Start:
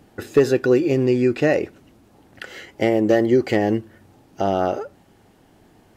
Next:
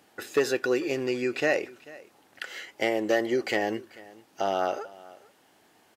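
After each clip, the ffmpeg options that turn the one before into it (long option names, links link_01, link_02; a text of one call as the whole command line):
ffmpeg -i in.wav -af "highpass=frequency=1100:poles=1,aecho=1:1:440:0.0891" out.wav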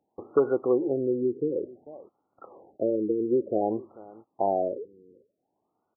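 ffmpeg -i in.wav -af "agate=range=-17dB:threshold=-51dB:ratio=16:detection=peak,afftfilt=real='re*lt(b*sr/1024,480*pow(1500/480,0.5+0.5*sin(2*PI*0.55*pts/sr)))':imag='im*lt(b*sr/1024,480*pow(1500/480,0.5+0.5*sin(2*PI*0.55*pts/sr)))':win_size=1024:overlap=0.75,volume=2.5dB" out.wav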